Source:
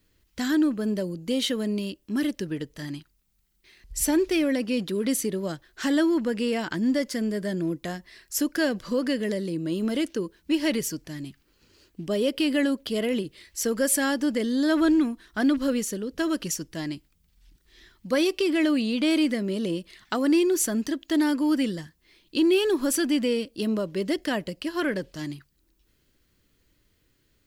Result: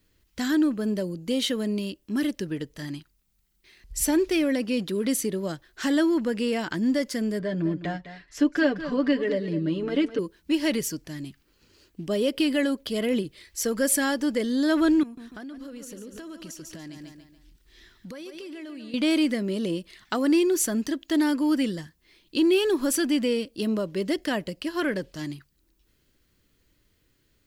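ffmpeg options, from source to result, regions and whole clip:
ffmpeg -i in.wav -filter_complex "[0:a]asettb=1/sr,asplit=3[link_01][link_02][link_03];[link_01]atrim=end=7.394[link_04];[link_02]atrim=start=7.39:end=10.19,asetpts=PTS-STARTPTS,afade=type=in:duration=0.004:curve=qsin,afade=type=out:start_time=2.796:duration=0.004:curve=qsin,lowpass=3100,aecho=1:1:6.9:0.74,atrim=end_sample=123480,aecho=1:1:206:0.237,atrim=end_sample=123480[link_05];[link_03]atrim=start=10.186[link_06];[link_04][link_05]acrossfade=duration=0.004:curve1=hsin:curve2=qsin[link_07];[link_07][link_06]acrossfade=duration=0.004:curve1=qsin:curve2=hsin,asettb=1/sr,asplit=3[link_08][link_09][link_10];[link_08]atrim=end=12.374[link_11];[link_09]atrim=start=12.37:end=14.5,asetpts=PTS-STARTPTS,afade=type=in:duration=0.004:curve=qsin,afade=type=out:start_time=2.126:duration=0.004:curve=qsin,bandreject=frequency=2800:width=30,aphaser=in_gain=1:out_gain=1:delay=2.6:decay=0.21:speed=1.3:type=triangular[link_12];[link_10]atrim=start=14.496[link_13];[link_11][link_12]acrossfade=duration=0.004:curve1=hsin:curve2=qsin[link_14];[link_14][link_13]acrossfade=duration=0.004:curve1=qsin:curve2=hsin,asettb=1/sr,asplit=3[link_15][link_16][link_17];[link_15]atrim=end=15.034[link_18];[link_16]atrim=start=15.03:end=18.94,asetpts=PTS-STARTPTS,afade=type=in:duration=0.004:curve=qsin,afade=type=out:start_time=3.906:duration=0.004:curve=qsin,aecho=1:1:143|286|429|572:0.282|0.118|0.0497|0.0209,atrim=end_sample=172431,acompressor=threshold=-37dB:ratio=8:attack=3.2:release=140:knee=1:detection=peak[link_19];[link_17]atrim=start=18.936[link_20];[link_18][link_19]acrossfade=duration=0.004:curve1=hsin:curve2=qsin[link_21];[link_21][link_20]acrossfade=duration=0.004:curve1=qsin:curve2=hsin" out.wav

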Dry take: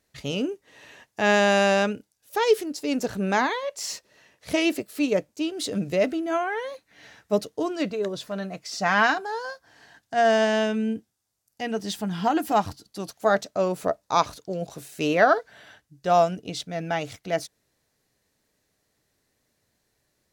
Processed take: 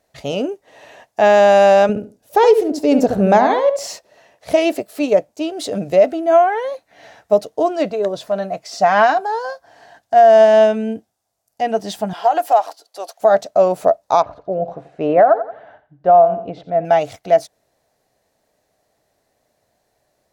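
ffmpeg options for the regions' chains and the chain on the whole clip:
ffmpeg -i in.wav -filter_complex "[0:a]asettb=1/sr,asplit=3[link_01][link_02][link_03];[link_01]atrim=end=1.894[link_04];[link_02]atrim=start=1.89:end=3.88,asetpts=PTS-STARTPTS,afade=type=in:duration=0.004:curve=qsin,afade=type=out:start_time=1.986:duration=0.004:curve=qsin,lowshelf=frequency=440:gain=10,asplit=2[link_05][link_06];[link_06]adelay=70,lowpass=frequency=1600:poles=1,volume=-6.5dB,asplit=2[link_07][link_08];[link_08]adelay=70,lowpass=frequency=1600:poles=1,volume=0.22,asplit=2[link_09][link_10];[link_10]adelay=70,lowpass=frequency=1600:poles=1,volume=0.22[link_11];[link_05][link_07][link_09][link_11]amix=inputs=4:normalize=0,atrim=end_sample=87759[link_12];[link_03]atrim=start=3.876[link_13];[link_04][link_12]acrossfade=duration=0.004:curve1=hsin:curve2=qsin[link_14];[link_14][link_13]acrossfade=duration=0.004:curve1=qsin:curve2=hsin,asettb=1/sr,asplit=3[link_15][link_16][link_17];[link_15]atrim=end=12.134[link_18];[link_16]atrim=start=12.13:end=13.2,asetpts=PTS-STARTPTS,afade=type=in:duration=0.004:curve=qsin,afade=type=out:start_time=1.066:duration=0.004:curve=qsin,highpass=frequency=460:width=0.5412,highpass=frequency=460:width=1.3066,acompressor=threshold=-23dB:ratio=3:attack=3.2:release=140:knee=1:detection=peak[link_19];[link_17]atrim=start=13.196[link_20];[link_18][link_19]acrossfade=duration=0.004:curve1=hsin:curve2=qsin[link_21];[link_21][link_20]acrossfade=duration=0.004:curve1=qsin:curve2=hsin,asettb=1/sr,asplit=3[link_22][link_23][link_24];[link_22]atrim=end=14.224[link_25];[link_23]atrim=start=14.22:end=16.85,asetpts=PTS-STARTPTS,afade=type=in:duration=0.004:curve=qsin,afade=type=out:start_time=2.626:duration=0.004:curve=qsin,lowpass=1500,aecho=1:1:86|172|258:0.188|0.0546|0.0158,atrim=end_sample=115983[link_26];[link_24]atrim=start=16.846[link_27];[link_25][link_26]acrossfade=duration=0.004:curve1=hsin:curve2=qsin[link_28];[link_28][link_27]acrossfade=duration=0.004:curve1=qsin:curve2=hsin,equalizer=frequency=680:width_type=o:width=0.91:gain=14.5,alimiter=limit=-5dB:level=0:latency=1:release=189,volume=2dB" out.wav

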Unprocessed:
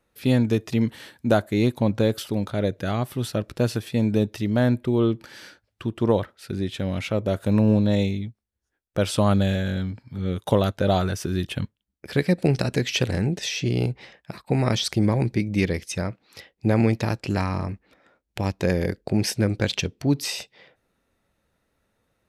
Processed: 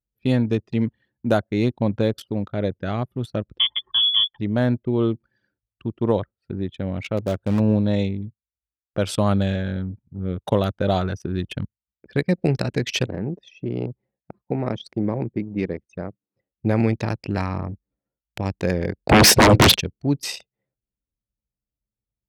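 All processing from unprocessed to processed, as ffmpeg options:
ffmpeg -i in.wav -filter_complex "[0:a]asettb=1/sr,asplit=3[link_01][link_02][link_03];[link_01]atrim=end=3.594[link_04];[link_02]atrim=start=3.59:end=4.39,asetpts=PTS-STARTPTS,afade=type=in:duration=0.004:curve=qsin,afade=type=out:start_time=0.796:duration=0.004:curve=qsin,aecho=1:1:4:0.65,atrim=end_sample=35280,lowpass=frequency=3100:width_type=q:width=0.5098,lowpass=frequency=3100:width_type=q:width=0.6013,lowpass=frequency=3100:width_type=q:width=0.9,lowpass=frequency=3100:width_type=q:width=2.563,afreqshift=-3600[link_05];[link_03]atrim=start=4.386[link_06];[link_04][link_05]acrossfade=duration=0.004:curve1=hsin:curve2=qsin[link_07];[link_07][link_06]acrossfade=duration=0.004:curve1=qsin:curve2=hsin,asettb=1/sr,asplit=3[link_08][link_09][link_10];[link_08]atrim=end=7.174[link_11];[link_09]atrim=start=7.17:end=7.6,asetpts=PTS-STARTPTS,afade=type=in:duration=0.004:curve=qsin,afade=type=out:start_time=0.426:duration=0.004:curve=qsin,volume=13.5dB,asoftclip=hard,volume=-13.5dB,acrusher=bits=4:mode=log:mix=0:aa=0.000001[link_12];[link_10]atrim=start=7.596[link_13];[link_11][link_12]acrossfade=duration=0.004:curve1=hsin:curve2=qsin[link_14];[link_14][link_13]acrossfade=duration=0.004:curve1=qsin:curve2=hsin,asettb=1/sr,asplit=3[link_15][link_16][link_17];[link_15]atrim=end=13.064[link_18];[link_16]atrim=start=13.06:end=16.51,asetpts=PTS-STARTPTS,afade=type=in:duration=0.004:curve=qsin,afade=type=out:start_time=3.446:duration=0.004:curve=qsin,bandpass=frequency=400:width_type=q:width=0.51,aemphasis=mode=production:type=75fm[link_19];[link_17]atrim=start=16.506[link_20];[link_18][link_19]acrossfade=duration=0.004:curve1=hsin:curve2=qsin[link_21];[link_21][link_20]acrossfade=duration=0.004:curve1=qsin:curve2=hsin,asettb=1/sr,asplit=3[link_22][link_23][link_24];[link_22]atrim=end=19.094[link_25];[link_23]atrim=start=19.09:end=19.76,asetpts=PTS-STARTPTS,afade=type=in:duration=0.004:curve=qsin,afade=type=out:start_time=0.666:duration=0.004:curve=qsin,highshelf=frequency=2400:gain=-4.5,aeval=exprs='0.398*sin(PI/2*8.91*val(0)/0.398)':channel_layout=same[link_26];[link_24]atrim=start=19.756[link_27];[link_25][link_26]acrossfade=duration=0.004:curve1=hsin:curve2=qsin[link_28];[link_28][link_27]acrossfade=duration=0.004:curve1=qsin:curve2=hsin,anlmdn=39.8,highpass=49" out.wav

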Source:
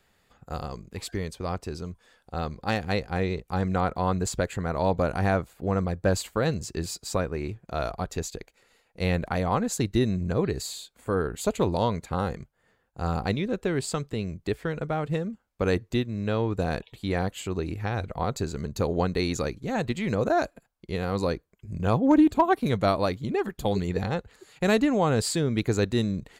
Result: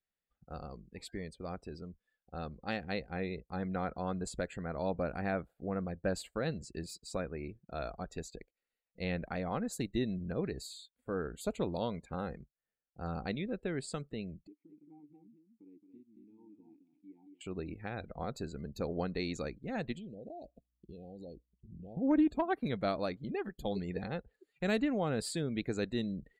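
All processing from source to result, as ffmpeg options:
ffmpeg -i in.wav -filter_complex "[0:a]asettb=1/sr,asplit=3[link_01][link_02][link_03];[link_01]atrim=end=14.474[link_04];[link_02]atrim=start=14.47:end=17.41,asetpts=PTS-STARTPTS,afade=type=in:duration=0.004:curve=qsin,afade=type=out:start_time=2.936:duration=0.004:curve=qsin,acompressor=threshold=-39dB:ratio=2:attack=3.2:release=140:knee=1:detection=peak,asplit=3[link_05][link_06][link_07];[link_05]bandpass=frequency=300:width_type=q:width=8,volume=0dB[link_08];[link_06]bandpass=frequency=870:width_type=q:width=8,volume=-6dB[link_09];[link_07]bandpass=frequency=2240:width_type=q:width=8,volume=-9dB[link_10];[link_08][link_09][link_10]amix=inputs=3:normalize=0,aecho=1:1:221:0.562,atrim=end_sample=129654[link_11];[link_03]atrim=start=17.406[link_12];[link_04][link_11]acrossfade=duration=0.004:curve1=hsin:curve2=qsin[link_13];[link_13][link_12]acrossfade=duration=0.004:curve1=qsin:curve2=hsin,asettb=1/sr,asplit=3[link_14][link_15][link_16];[link_14]atrim=end=19.974[link_17];[link_15]atrim=start=19.97:end=21.97,asetpts=PTS-STARTPTS,afade=type=in:duration=0.004:curve=qsin,afade=type=out:start_time=1.996:duration=0.004:curve=qsin,asuperstop=centerf=1500:order=12:qfactor=0.84,acompressor=threshold=-33dB:ratio=10:attack=3.2:release=140:knee=1:detection=peak,aeval=exprs='val(0)+0.000708*(sin(2*PI*60*n/s)+sin(2*PI*2*60*n/s)/2+sin(2*PI*3*60*n/s)/3+sin(2*PI*4*60*n/s)/4+sin(2*PI*5*60*n/s)/5)':channel_layout=same[link_18];[link_16]atrim=start=21.966[link_19];[link_17][link_18]acrossfade=duration=0.004:curve1=hsin:curve2=qsin[link_20];[link_20][link_19]acrossfade=duration=0.004:curve1=qsin:curve2=hsin,afftdn=noise_reduction=21:noise_floor=-45,equalizer=frequency=100:width_type=o:width=0.67:gain=-11,equalizer=frequency=400:width_type=o:width=0.67:gain=-3,equalizer=frequency=1000:width_type=o:width=0.67:gain=-8,equalizer=frequency=6300:width_type=o:width=0.67:gain=-8,volume=-7dB" out.wav

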